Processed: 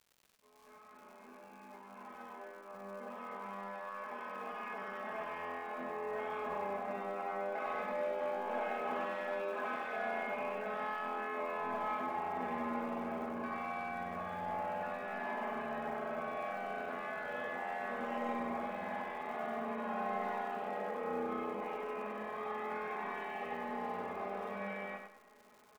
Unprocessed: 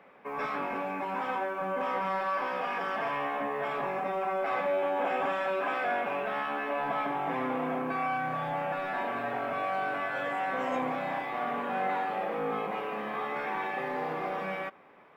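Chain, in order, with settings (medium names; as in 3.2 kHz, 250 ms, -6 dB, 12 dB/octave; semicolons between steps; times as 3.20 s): fade-in on the opening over 4.12 s; treble shelf 3.5 kHz -10.5 dB; in parallel at -6.5 dB: hard clipper -28.5 dBFS, distortion -15 dB; on the sum: feedback comb 270 Hz, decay 0.99 s, mix 80%; granular stretch 1.7×, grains 23 ms; crackle 220 per s -57 dBFS; feedback delay 96 ms, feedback 29%, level -6 dB; trim +4 dB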